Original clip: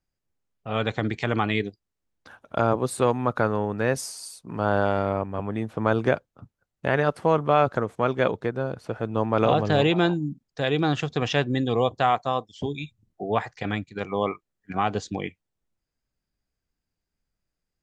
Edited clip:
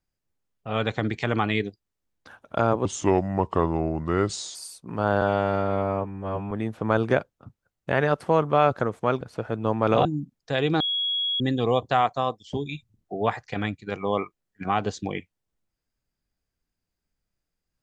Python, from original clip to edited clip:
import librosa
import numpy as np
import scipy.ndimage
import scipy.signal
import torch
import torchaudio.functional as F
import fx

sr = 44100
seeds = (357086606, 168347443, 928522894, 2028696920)

y = fx.edit(x, sr, fx.speed_span(start_s=2.85, length_s=1.31, speed=0.77),
    fx.stretch_span(start_s=4.82, length_s=0.65, factor=2.0),
    fx.cut(start_s=8.17, length_s=0.55),
    fx.cut(start_s=9.56, length_s=0.58),
    fx.bleep(start_s=10.89, length_s=0.6, hz=3330.0, db=-23.0), tone=tone)